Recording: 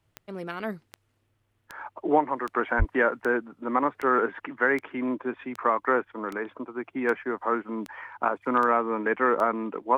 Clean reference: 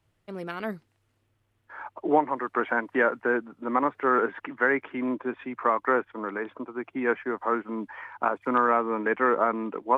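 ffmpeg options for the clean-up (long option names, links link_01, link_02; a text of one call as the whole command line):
ffmpeg -i in.wav -filter_complex "[0:a]adeclick=threshold=4,asplit=3[link_01][link_02][link_03];[link_01]afade=type=out:start_time=2.78:duration=0.02[link_04];[link_02]highpass=frequency=140:width=0.5412,highpass=frequency=140:width=1.3066,afade=type=in:start_time=2.78:duration=0.02,afade=type=out:start_time=2.9:duration=0.02[link_05];[link_03]afade=type=in:start_time=2.9:duration=0.02[link_06];[link_04][link_05][link_06]amix=inputs=3:normalize=0" out.wav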